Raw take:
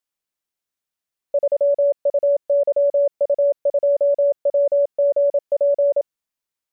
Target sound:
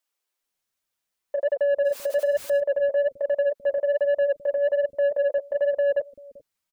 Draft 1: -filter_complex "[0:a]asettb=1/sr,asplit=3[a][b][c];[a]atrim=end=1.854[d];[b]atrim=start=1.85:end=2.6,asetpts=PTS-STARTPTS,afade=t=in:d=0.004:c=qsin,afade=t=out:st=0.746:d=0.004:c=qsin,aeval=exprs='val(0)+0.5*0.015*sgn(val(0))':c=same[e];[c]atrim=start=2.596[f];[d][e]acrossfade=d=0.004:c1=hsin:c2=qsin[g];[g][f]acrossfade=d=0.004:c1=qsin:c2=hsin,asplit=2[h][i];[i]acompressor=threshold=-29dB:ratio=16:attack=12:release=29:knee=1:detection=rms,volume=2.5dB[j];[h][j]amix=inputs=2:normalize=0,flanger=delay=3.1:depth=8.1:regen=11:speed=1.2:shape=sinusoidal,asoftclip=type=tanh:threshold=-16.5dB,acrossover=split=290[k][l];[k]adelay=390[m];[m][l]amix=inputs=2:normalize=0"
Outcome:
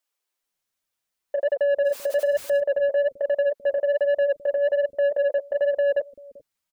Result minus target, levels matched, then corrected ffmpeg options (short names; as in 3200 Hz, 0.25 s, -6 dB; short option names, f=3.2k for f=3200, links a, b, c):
compressor: peak gain reduction -9 dB
-filter_complex "[0:a]asettb=1/sr,asplit=3[a][b][c];[a]atrim=end=1.854[d];[b]atrim=start=1.85:end=2.6,asetpts=PTS-STARTPTS,afade=t=in:d=0.004:c=qsin,afade=t=out:st=0.746:d=0.004:c=qsin,aeval=exprs='val(0)+0.5*0.015*sgn(val(0))':c=same[e];[c]atrim=start=2.596[f];[d][e]acrossfade=d=0.004:c1=hsin:c2=qsin[g];[g][f]acrossfade=d=0.004:c1=qsin:c2=hsin,asplit=2[h][i];[i]acompressor=threshold=-38.5dB:ratio=16:attack=12:release=29:knee=1:detection=rms,volume=2.5dB[j];[h][j]amix=inputs=2:normalize=0,flanger=delay=3.1:depth=8.1:regen=11:speed=1.2:shape=sinusoidal,asoftclip=type=tanh:threshold=-16.5dB,acrossover=split=290[k][l];[k]adelay=390[m];[m][l]amix=inputs=2:normalize=0"